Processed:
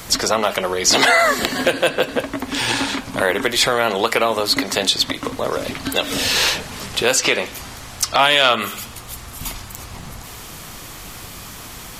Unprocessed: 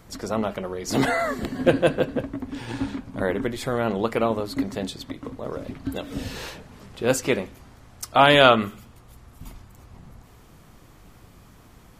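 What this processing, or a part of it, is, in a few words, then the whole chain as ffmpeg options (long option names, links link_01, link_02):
mastering chain: -filter_complex "[0:a]equalizer=frequency=1600:width_type=o:width=1.4:gain=-3,acrossover=split=360|6400[link_01][link_02][link_03];[link_01]acompressor=threshold=-39dB:ratio=4[link_04];[link_02]acompressor=threshold=-24dB:ratio=4[link_05];[link_03]acompressor=threshold=-52dB:ratio=4[link_06];[link_04][link_05][link_06]amix=inputs=3:normalize=0,acompressor=threshold=-35dB:ratio=1.5,asoftclip=type=tanh:threshold=-19dB,tiltshelf=frequency=910:gain=-7.5,alimiter=level_in=18.5dB:limit=-1dB:release=50:level=0:latency=1,volume=-1dB"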